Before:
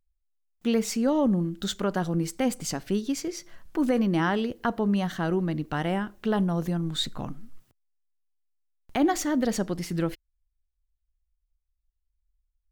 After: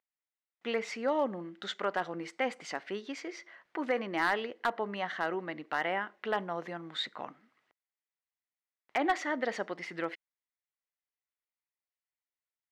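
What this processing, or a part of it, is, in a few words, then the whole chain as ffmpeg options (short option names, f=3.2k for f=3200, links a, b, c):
megaphone: -af "highpass=580,lowpass=2.8k,equalizer=f=2k:t=o:w=0.28:g=8,asoftclip=type=hard:threshold=-20dB"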